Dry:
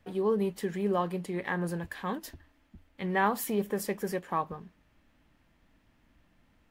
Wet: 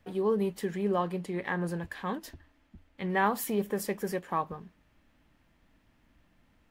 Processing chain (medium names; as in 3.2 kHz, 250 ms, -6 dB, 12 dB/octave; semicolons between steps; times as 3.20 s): 0.74–3.10 s: treble shelf 10 kHz -6.5 dB